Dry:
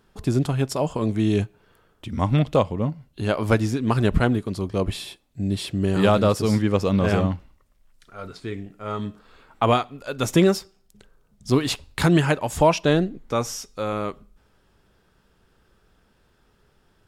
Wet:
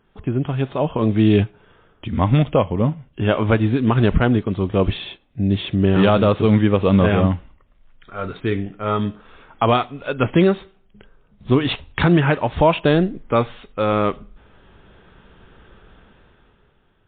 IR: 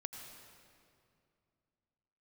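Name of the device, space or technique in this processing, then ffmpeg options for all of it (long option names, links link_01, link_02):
low-bitrate web radio: -filter_complex "[0:a]asettb=1/sr,asplit=3[link_01][link_02][link_03];[link_01]atrim=end=12.124[link_04];[link_02]atrim=start=12.12:end=12.54,asetpts=PTS-STARTPTS,afade=type=in:duration=0.004:curve=qsin,afade=type=out:start_time=0.416:duration=0.004:curve=qsin,adynamicequalizer=threshold=0.00631:dfrequency=3100:dqfactor=4.2:tfrequency=3100:tqfactor=4.2:attack=5:release=100:ratio=0.375:range=3:mode=cutabove:tftype=bell[link_05];[link_03]atrim=start=12.536[link_06];[link_04][link_05]acrossfade=duration=0.004:curve1=hsin:curve2=qsin[link_07];[link_07][link_06]acrossfade=duration=0.004:curve1=qsin:curve2=hsin,dynaudnorm=framelen=180:gausssize=11:maxgain=14.5dB,alimiter=limit=-5dB:level=0:latency=1:release=113" -ar 8000 -c:a libmp3lame -b:a 24k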